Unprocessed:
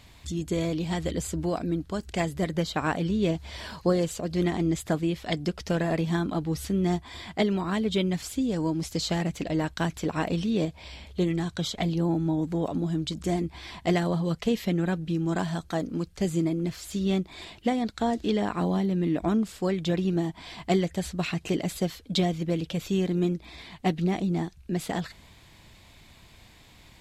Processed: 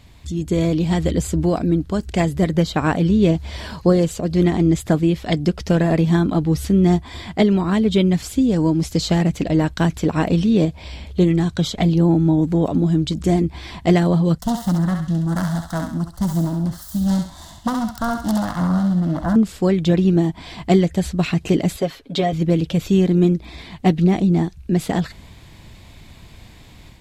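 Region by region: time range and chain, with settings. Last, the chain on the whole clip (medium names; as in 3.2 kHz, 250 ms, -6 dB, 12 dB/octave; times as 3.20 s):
14.38–19.36 s: self-modulated delay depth 0.56 ms + static phaser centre 1 kHz, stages 4 + thinning echo 67 ms, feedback 48%, high-pass 850 Hz, level -3 dB
21.76–22.33 s: tone controls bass -12 dB, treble -9 dB + comb 7.3 ms, depth 62%
whole clip: bass shelf 430 Hz +7 dB; level rider gain up to 5.5 dB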